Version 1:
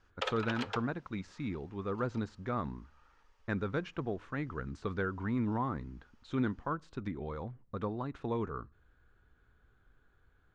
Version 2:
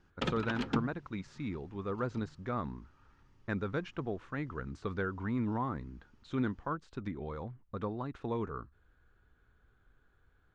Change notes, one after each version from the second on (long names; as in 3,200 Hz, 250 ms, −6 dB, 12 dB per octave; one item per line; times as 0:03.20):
background: remove Butterworth high-pass 440 Hz 72 dB per octave
reverb: off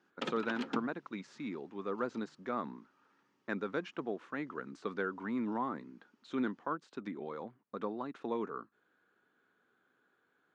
background −3.0 dB
master: add high-pass filter 210 Hz 24 dB per octave